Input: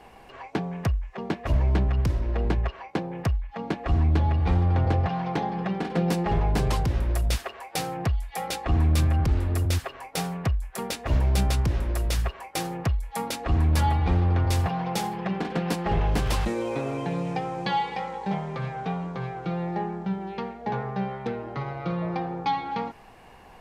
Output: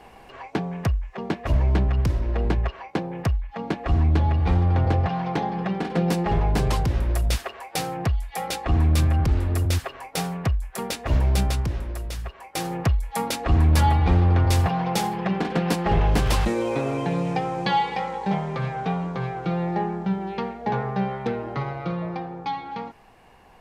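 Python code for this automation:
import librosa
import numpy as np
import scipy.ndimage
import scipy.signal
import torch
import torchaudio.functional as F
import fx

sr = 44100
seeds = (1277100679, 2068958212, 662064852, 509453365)

y = fx.gain(x, sr, db=fx.line((11.32, 2.0), (12.2, -7.0), (12.74, 4.0), (21.58, 4.0), (22.3, -3.0)))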